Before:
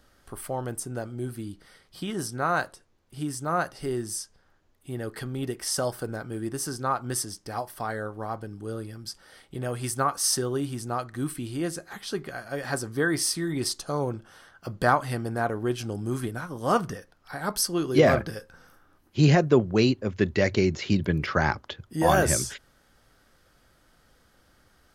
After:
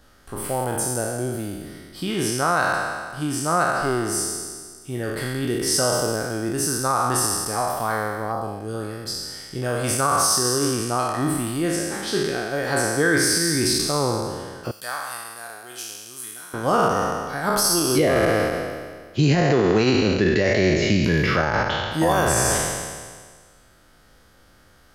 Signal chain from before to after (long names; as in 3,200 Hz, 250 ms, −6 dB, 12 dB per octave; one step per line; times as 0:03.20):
peak hold with a decay on every bin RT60 1.69 s
0:14.71–0:16.54: first-order pre-emphasis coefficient 0.97
brickwall limiter −13.5 dBFS, peak gain reduction 11 dB
0:08.31–0:08.73: parametric band 3,000 Hz → 820 Hz −12 dB 0.95 octaves
level +4 dB